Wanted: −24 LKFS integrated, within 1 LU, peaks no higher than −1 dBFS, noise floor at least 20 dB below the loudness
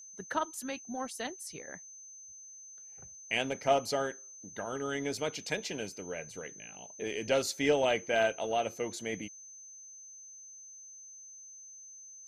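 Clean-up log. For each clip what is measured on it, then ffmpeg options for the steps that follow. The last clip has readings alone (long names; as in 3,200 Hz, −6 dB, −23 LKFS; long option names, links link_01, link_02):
interfering tone 6,200 Hz; level of the tone −48 dBFS; integrated loudness −33.5 LKFS; sample peak −14.5 dBFS; target loudness −24.0 LKFS
→ -af "bandreject=frequency=6200:width=30"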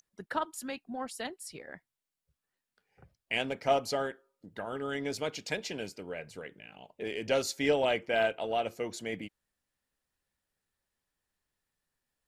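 interfering tone none found; integrated loudness −33.5 LKFS; sample peak −14.5 dBFS; target loudness −24.0 LKFS
→ -af "volume=9.5dB"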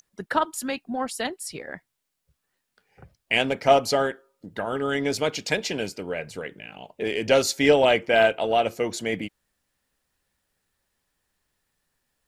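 integrated loudness −24.0 LKFS; sample peak −5.0 dBFS; background noise floor −79 dBFS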